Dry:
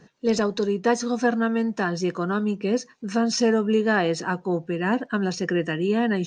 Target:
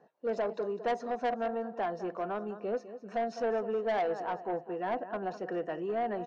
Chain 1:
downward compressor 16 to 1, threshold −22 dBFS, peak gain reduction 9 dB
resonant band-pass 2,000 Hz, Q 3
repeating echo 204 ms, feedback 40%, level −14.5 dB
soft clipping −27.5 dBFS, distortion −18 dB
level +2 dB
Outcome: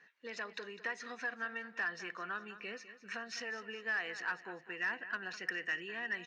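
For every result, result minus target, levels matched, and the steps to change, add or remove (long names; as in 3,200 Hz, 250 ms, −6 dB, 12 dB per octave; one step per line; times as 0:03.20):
2,000 Hz band +14.0 dB; downward compressor: peak gain reduction +9 dB
change: resonant band-pass 680 Hz, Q 3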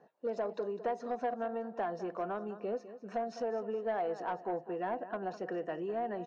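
downward compressor: peak gain reduction +9 dB
remove: downward compressor 16 to 1, threshold −22 dBFS, peak gain reduction 9 dB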